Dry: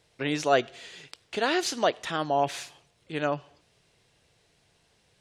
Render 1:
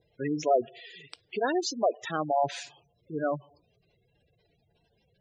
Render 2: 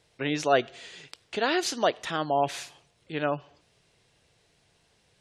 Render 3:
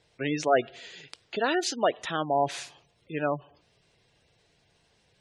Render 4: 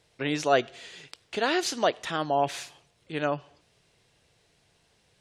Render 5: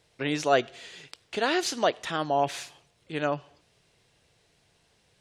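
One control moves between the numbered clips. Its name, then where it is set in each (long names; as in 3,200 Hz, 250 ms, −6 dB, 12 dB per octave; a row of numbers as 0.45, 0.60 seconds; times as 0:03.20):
gate on every frequency bin, under each frame's peak: −10, −35, −20, −45, −60 decibels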